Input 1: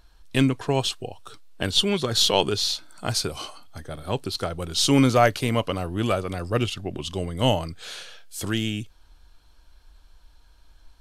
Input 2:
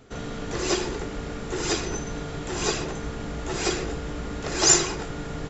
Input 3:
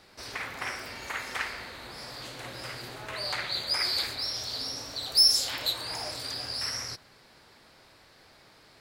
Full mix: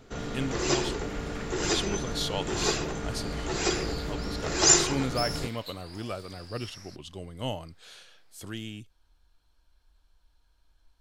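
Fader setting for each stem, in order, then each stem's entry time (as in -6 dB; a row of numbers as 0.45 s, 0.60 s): -12.0 dB, -1.5 dB, -14.5 dB; 0.00 s, 0.00 s, 0.00 s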